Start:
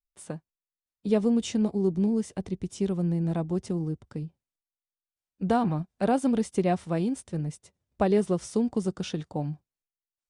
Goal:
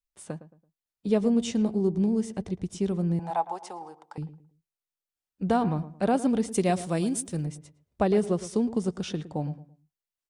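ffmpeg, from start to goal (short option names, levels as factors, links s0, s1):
-filter_complex "[0:a]asettb=1/sr,asplit=3[s0][s1][s2];[s0]atrim=end=3.194[s3];[s1]atrim=start=3.19:end=4.18,asetpts=PTS-STARTPTS,afade=t=in:d=0.004:c=qsin,afade=t=out:st=0.986:d=0.004:c=qsin,highpass=f=840:t=q:w=8.5[s4];[s2]atrim=start=4.176[s5];[s3][s4]acrossfade=d=0.004:c1=hsin:c2=qsin[s6];[s6][s5]acrossfade=d=0.004:c1=qsin:c2=hsin,asettb=1/sr,asplit=3[s7][s8][s9];[s7]atrim=end=6.514[s10];[s8]atrim=start=6.51:end=7.46,asetpts=PTS-STARTPTS,afade=t=in:d=0.004:c=qsin,afade=t=out:st=0.946:d=0.004:c=qsin,aemphasis=mode=production:type=75kf[s11];[s9]atrim=start=7.456[s12];[s10][s11]acrossfade=d=0.004:c1=hsin:c2=qsin[s13];[s13][s12]acrossfade=d=0.004:c1=qsin:c2=hsin,asplit=2[s14][s15];[s15]adelay=111,lowpass=f=1500:p=1,volume=0.2,asplit=2[s16][s17];[s17]adelay=111,lowpass=f=1500:p=1,volume=0.32,asplit=2[s18][s19];[s19]adelay=111,lowpass=f=1500:p=1,volume=0.32[s20];[s14][s16][s18][s20]amix=inputs=4:normalize=0"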